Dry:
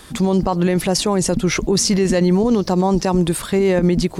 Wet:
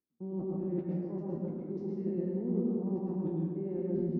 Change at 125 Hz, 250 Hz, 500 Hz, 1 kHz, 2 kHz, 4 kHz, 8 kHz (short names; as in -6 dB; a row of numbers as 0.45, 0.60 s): -17.0 dB, -16.0 dB, -17.5 dB, -29.0 dB, under -35 dB, under -40 dB, under -40 dB